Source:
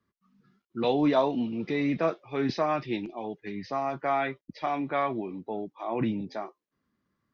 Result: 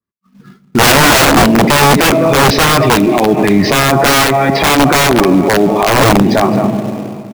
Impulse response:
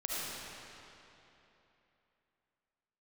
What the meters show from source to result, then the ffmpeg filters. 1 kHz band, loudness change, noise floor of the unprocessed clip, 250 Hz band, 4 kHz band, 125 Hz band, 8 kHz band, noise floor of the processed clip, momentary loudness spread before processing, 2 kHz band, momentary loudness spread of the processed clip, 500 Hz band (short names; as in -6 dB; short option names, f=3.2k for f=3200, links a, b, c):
+20.0 dB, +20.5 dB, under -85 dBFS, +19.0 dB, +29.5 dB, +24.5 dB, n/a, -50 dBFS, 12 LU, +26.5 dB, 5 LU, +18.5 dB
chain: -filter_complex "[0:a]aecho=1:1:213:0.119,agate=range=-33dB:threshold=-58dB:ratio=3:detection=peak,asplit=2[a][b];[b]firequalizer=gain_entry='entry(100,0);entry(150,8);entry(220,3);entry(1600,-7);entry(2500,0);entry(6600,-26)':delay=0.05:min_phase=1[c];[1:a]atrim=start_sample=2205[d];[c][d]afir=irnorm=-1:irlink=0,volume=-21dB[e];[a][e]amix=inputs=2:normalize=0,asoftclip=type=tanh:threshold=-15.5dB,dynaudnorm=f=110:g=9:m=12.5dB,asplit=2[f][g];[g]acrusher=bits=2:mode=log:mix=0:aa=0.000001,volume=-4dB[h];[f][h]amix=inputs=2:normalize=0,aeval=exprs='(mod(2.37*val(0)+1,2)-1)/2.37':c=same,alimiter=level_in=19.5dB:limit=-1dB:release=50:level=0:latency=1,adynamicequalizer=threshold=0.0794:dfrequency=2000:dqfactor=0.7:tfrequency=2000:tqfactor=0.7:attack=5:release=100:ratio=0.375:range=2.5:mode=cutabove:tftype=highshelf,volume=-1dB"